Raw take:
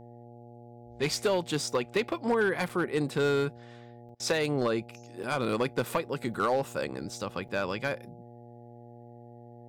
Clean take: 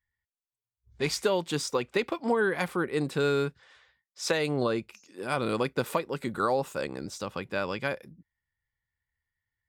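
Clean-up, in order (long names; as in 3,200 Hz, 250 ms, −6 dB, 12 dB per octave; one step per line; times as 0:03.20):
clipped peaks rebuilt −20 dBFS
hum removal 119.1 Hz, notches 7
repair the gap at 0:02.69/0:04.09/0:05.23/0:06.34/0:07.48, 5 ms
repair the gap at 0:04.15, 47 ms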